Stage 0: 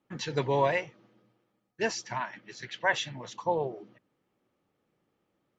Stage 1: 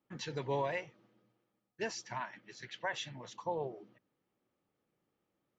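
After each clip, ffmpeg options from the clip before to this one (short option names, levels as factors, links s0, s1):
-af "alimiter=limit=0.119:level=0:latency=1:release=144,volume=0.473"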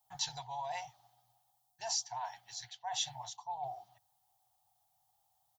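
-af "firequalizer=gain_entry='entry(110,0);entry(220,-29);entry(480,-29);entry(740,15);entry(1200,-9);entry(2400,-14);entry(3500,-3)':delay=0.05:min_phase=1,areverse,acompressor=threshold=0.00891:ratio=10,areverse,crystalizer=i=5:c=0,volume=1.26"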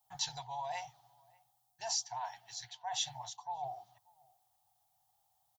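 -filter_complex "[0:a]asplit=2[s0][s1];[s1]adelay=583.1,volume=0.0447,highshelf=f=4000:g=-13.1[s2];[s0][s2]amix=inputs=2:normalize=0"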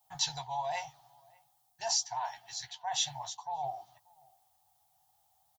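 -filter_complex "[0:a]asplit=2[s0][s1];[s1]adelay=13,volume=0.422[s2];[s0][s2]amix=inputs=2:normalize=0,volume=1.58"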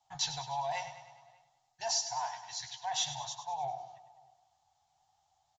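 -af "asoftclip=type=tanh:threshold=0.0668,aecho=1:1:101|202|303|404|505|606:0.282|0.152|0.0822|0.0444|0.024|0.0129,aresample=16000,aresample=44100"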